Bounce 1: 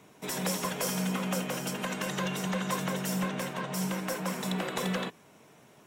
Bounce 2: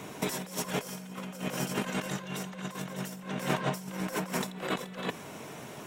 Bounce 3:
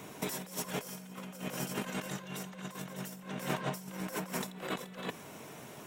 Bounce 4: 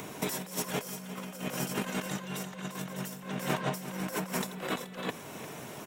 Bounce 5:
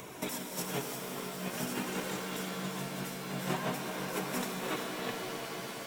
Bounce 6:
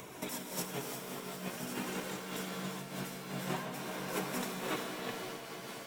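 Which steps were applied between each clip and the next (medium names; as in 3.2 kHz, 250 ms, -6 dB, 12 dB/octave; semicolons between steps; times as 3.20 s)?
compressor with a negative ratio -39 dBFS, ratio -0.5; trim +5.5 dB
treble shelf 12 kHz +8 dB; trim -5 dB
in parallel at -2 dB: upward compressor, threshold -39 dBFS; on the sum: delay 351 ms -14 dB; trim -1.5 dB
flange 0.49 Hz, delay 1.7 ms, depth 7.1 ms, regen +43%; pitch-shifted reverb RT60 4 s, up +7 st, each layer -2 dB, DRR 3 dB
random flutter of the level, depth 65%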